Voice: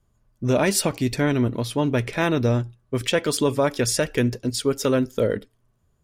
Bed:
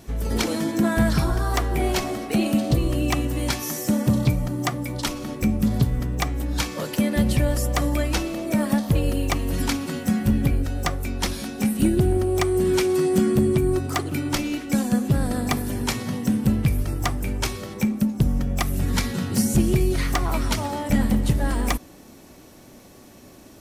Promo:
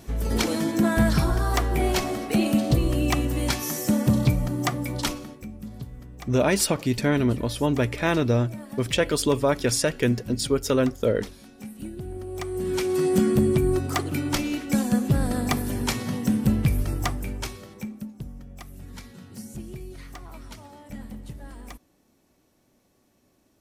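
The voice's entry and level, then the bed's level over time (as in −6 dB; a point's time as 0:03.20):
5.85 s, −1.0 dB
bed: 0:05.10 −0.5 dB
0:05.45 −17 dB
0:11.99 −17 dB
0:13.08 −1 dB
0:16.96 −1 dB
0:18.35 −18.5 dB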